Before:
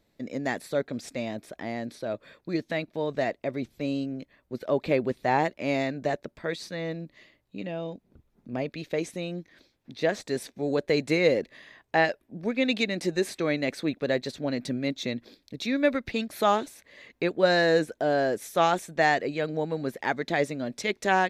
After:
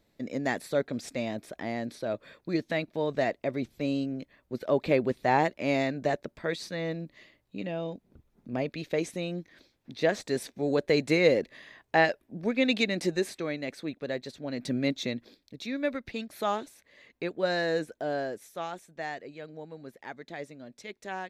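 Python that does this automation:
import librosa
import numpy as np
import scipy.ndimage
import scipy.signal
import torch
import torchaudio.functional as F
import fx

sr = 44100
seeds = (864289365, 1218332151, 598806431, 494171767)

y = fx.gain(x, sr, db=fx.line((13.05, 0.0), (13.53, -7.0), (14.46, -7.0), (14.79, 2.0), (15.55, -6.5), (18.16, -6.5), (18.64, -14.0)))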